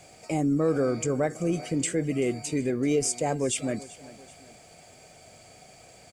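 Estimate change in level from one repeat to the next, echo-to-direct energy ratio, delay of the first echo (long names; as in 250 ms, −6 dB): −6.5 dB, −18.0 dB, 385 ms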